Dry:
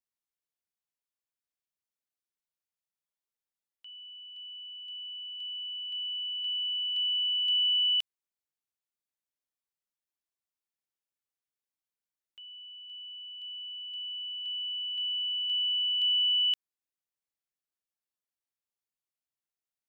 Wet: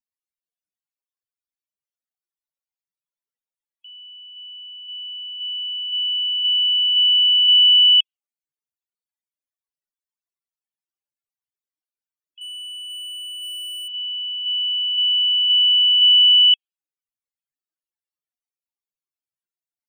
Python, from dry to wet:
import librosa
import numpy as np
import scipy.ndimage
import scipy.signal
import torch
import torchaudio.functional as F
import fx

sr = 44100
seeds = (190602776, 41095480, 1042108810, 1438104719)

y = fx.dynamic_eq(x, sr, hz=2900.0, q=2.4, threshold_db=-42.0, ratio=4.0, max_db=8)
y = fx.leveller(y, sr, passes=3, at=(12.41, 13.88))
y = fx.spec_topn(y, sr, count=32)
y = y * librosa.db_to_amplitude(6.0)